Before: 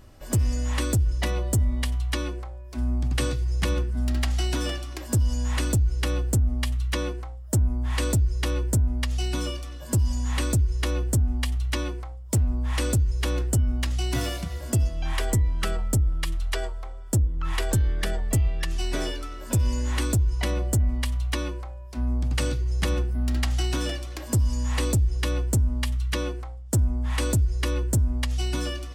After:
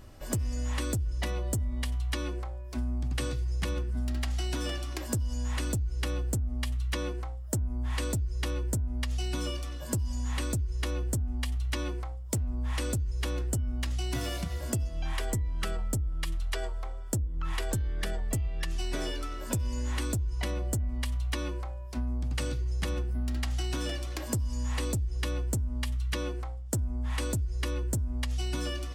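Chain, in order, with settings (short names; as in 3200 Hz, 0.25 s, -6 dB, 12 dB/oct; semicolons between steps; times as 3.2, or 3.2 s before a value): compressor, threshold -28 dBFS, peak gain reduction 9.5 dB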